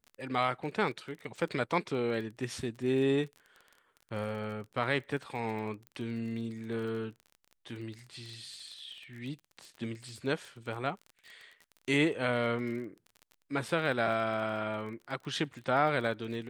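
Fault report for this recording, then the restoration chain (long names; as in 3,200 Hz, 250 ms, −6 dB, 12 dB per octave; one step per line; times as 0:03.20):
surface crackle 27 per second −41 dBFS
0:05.87: click −31 dBFS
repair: click removal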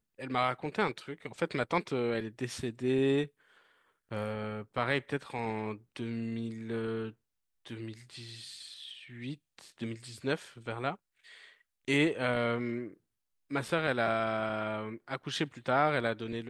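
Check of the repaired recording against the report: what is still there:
none of them is left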